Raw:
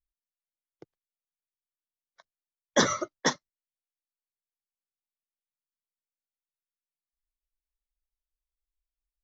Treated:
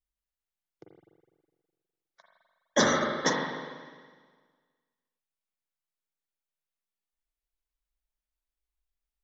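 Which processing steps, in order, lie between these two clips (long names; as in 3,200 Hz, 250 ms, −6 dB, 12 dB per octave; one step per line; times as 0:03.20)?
spring reverb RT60 1.6 s, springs 41/51 ms, chirp 35 ms, DRR −0.5 dB
level −1.5 dB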